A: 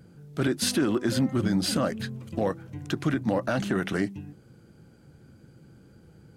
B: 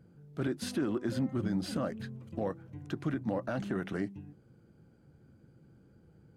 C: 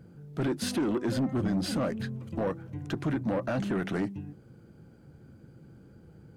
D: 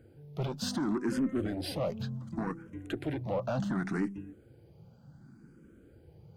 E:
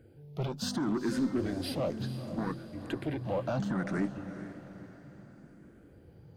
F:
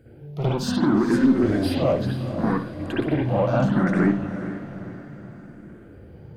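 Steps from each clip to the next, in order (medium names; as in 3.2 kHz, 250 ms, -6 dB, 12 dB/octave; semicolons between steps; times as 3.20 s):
treble shelf 2.2 kHz -9 dB; trim -7 dB
saturation -30.5 dBFS, distortion -12 dB; trim +7.5 dB
barber-pole phaser +0.68 Hz
echo that smears into a reverb 458 ms, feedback 47%, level -11.5 dB
reverberation, pre-delay 56 ms, DRR -6.5 dB; trim +4 dB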